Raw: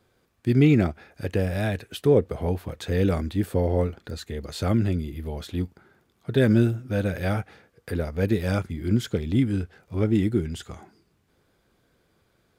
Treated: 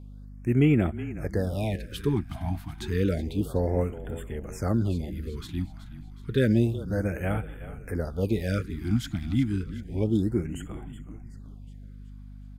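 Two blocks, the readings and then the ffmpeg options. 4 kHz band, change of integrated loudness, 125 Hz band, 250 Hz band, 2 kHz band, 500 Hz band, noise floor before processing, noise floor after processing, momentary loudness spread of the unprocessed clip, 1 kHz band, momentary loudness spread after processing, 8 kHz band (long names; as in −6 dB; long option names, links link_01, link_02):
−4.0 dB, −3.0 dB, −2.5 dB, −3.0 dB, −4.0 dB, −4.5 dB, −68 dBFS, −44 dBFS, 14 LU, −3.5 dB, 21 LU, −3.0 dB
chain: -filter_complex "[0:a]asplit=6[link_01][link_02][link_03][link_04][link_05][link_06];[link_02]adelay=372,afreqshift=-33,volume=-14dB[link_07];[link_03]adelay=744,afreqshift=-66,volume=-20dB[link_08];[link_04]adelay=1116,afreqshift=-99,volume=-26dB[link_09];[link_05]adelay=1488,afreqshift=-132,volume=-32.1dB[link_10];[link_06]adelay=1860,afreqshift=-165,volume=-38.1dB[link_11];[link_01][link_07][link_08][link_09][link_10][link_11]amix=inputs=6:normalize=0,aeval=exprs='val(0)+0.0112*(sin(2*PI*50*n/s)+sin(2*PI*2*50*n/s)/2+sin(2*PI*3*50*n/s)/3+sin(2*PI*4*50*n/s)/4+sin(2*PI*5*50*n/s)/5)':channel_layout=same,afftfilt=real='re*(1-between(b*sr/1024,430*pow(5100/430,0.5+0.5*sin(2*PI*0.3*pts/sr))/1.41,430*pow(5100/430,0.5+0.5*sin(2*PI*0.3*pts/sr))*1.41))':imag='im*(1-between(b*sr/1024,430*pow(5100/430,0.5+0.5*sin(2*PI*0.3*pts/sr))/1.41,430*pow(5100/430,0.5+0.5*sin(2*PI*0.3*pts/sr))*1.41))':win_size=1024:overlap=0.75,volume=-3dB"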